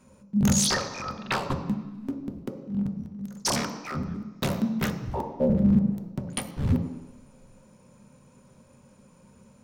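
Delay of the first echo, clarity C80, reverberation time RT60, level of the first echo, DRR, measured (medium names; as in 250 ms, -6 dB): no echo, 10.5 dB, 1.1 s, no echo, 4.0 dB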